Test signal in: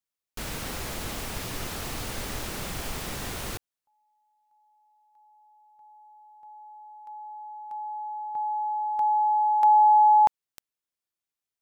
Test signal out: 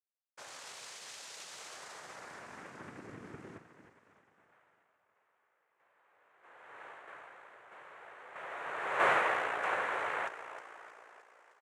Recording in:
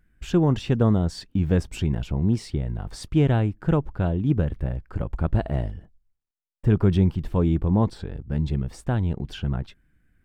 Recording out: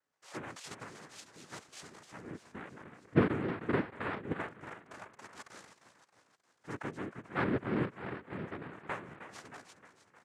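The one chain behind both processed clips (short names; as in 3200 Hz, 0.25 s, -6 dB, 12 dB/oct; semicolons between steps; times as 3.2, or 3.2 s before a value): LFO band-pass sine 0.22 Hz 320–2500 Hz; frequency-shifting echo 0.311 s, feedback 56%, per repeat +57 Hz, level -12 dB; noise vocoder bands 3; gain -3.5 dB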